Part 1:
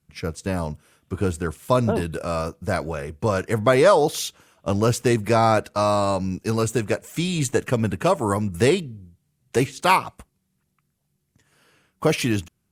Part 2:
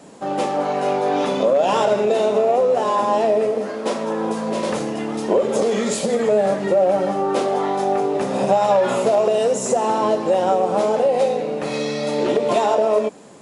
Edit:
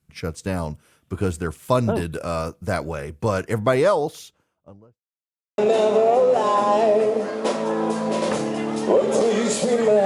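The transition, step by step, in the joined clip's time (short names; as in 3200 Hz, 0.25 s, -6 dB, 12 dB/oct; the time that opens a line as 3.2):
part 1
3.29–5.03 studio fade out
5.03–5.58 mute
5.58 switch to part 2 from 1.99 s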